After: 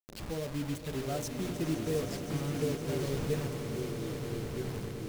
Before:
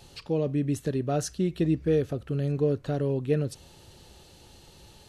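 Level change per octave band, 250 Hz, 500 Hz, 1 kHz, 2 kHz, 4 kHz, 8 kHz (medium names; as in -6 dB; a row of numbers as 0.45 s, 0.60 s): -6.0 dB, -6.5 dB, -3.0 dB, +1.0 dB, +1.5 dB, -1.5 dB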